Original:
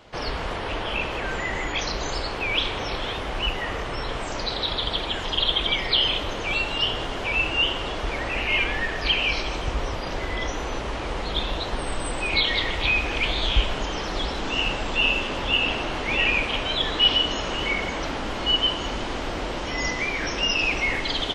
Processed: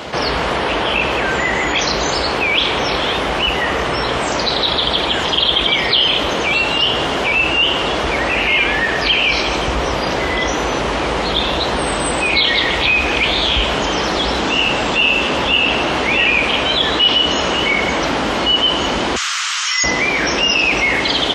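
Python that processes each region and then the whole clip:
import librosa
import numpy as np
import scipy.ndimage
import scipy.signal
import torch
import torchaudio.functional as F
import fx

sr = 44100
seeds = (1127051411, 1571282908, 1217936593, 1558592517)

y = fx.chain(x, sr, fx.ellip_highpass(hz=1200.0, order=4, stop_db=70),
    fx.peak_eq(hz=6800.0, db=12.5, octaves=0.84), at=(19.16, 19.84))
y = scipy.signal.sosfilt(scipy.signal.butter(4, 62.0, 'highpass', fs=sr, output='sos'), y)
y = fx.peak_eq(y, sr, hz=96.0, db=-15.0, octaves=0.3)
y = fx.env_flatten(y, sr, amount_pct=50)
y = y * librosa.db_to_amplitude(4.5)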